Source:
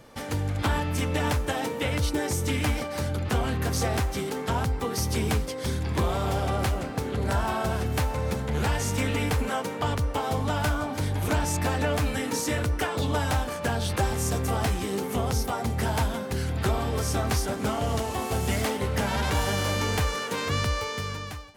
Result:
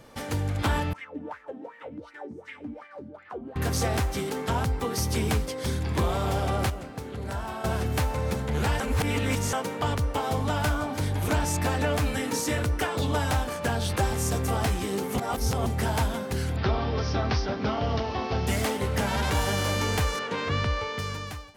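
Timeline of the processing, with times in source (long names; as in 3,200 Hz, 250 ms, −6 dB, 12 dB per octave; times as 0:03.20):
0:00.93–0:03.56: LFO wah 2.7 Hz 230–2,000 Hz, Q 6
0:06.70–0:07.64: clip gain −7 dB
0:08.80–0:09.53: reverse
0:15.18–0:15.66: reverse
0:16.56–0:18.47: Butterworth low-pass 5,600 Hz 72 dB per octave
0:20.19–0:20.99: low-pass filter 3,800 Hz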